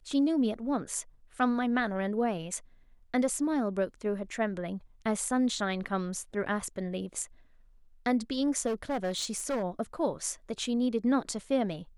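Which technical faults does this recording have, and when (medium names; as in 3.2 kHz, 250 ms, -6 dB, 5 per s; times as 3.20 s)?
8.66–9.64 s: clipped -27 dBFS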